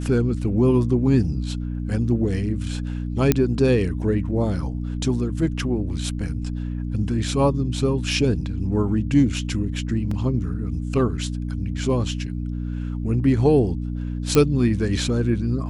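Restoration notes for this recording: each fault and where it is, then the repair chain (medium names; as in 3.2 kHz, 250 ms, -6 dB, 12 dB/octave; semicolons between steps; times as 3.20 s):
hum 60 Hz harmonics 5 -27 dBFS
3.32 s: pop -3 dBFS
10.11 s: dropout 3.8 ms
14.35 s: pop -5 dBFS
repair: de-click; de-hum 60 Hz, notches 5; interpolate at 10.11 s, 3.8 ms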